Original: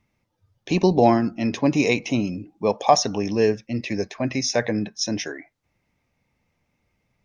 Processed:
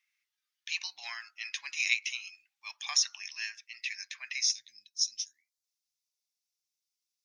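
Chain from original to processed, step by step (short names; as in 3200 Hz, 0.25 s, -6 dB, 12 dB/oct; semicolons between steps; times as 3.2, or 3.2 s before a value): inverse Chebyshev high-pass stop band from 510 Hz, stop band 60 dB, from 4.51 s stop band from 1300 Hz; gain -2 dB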